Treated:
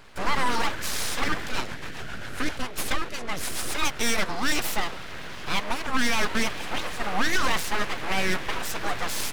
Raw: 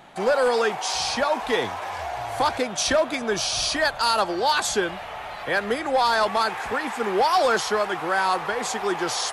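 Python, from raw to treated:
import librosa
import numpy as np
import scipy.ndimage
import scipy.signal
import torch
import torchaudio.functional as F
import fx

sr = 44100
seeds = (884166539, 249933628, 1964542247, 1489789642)

y = np.abs(x)
y = fx.rotary(y, sr, hz=7.5, at=(1.49, 3.72))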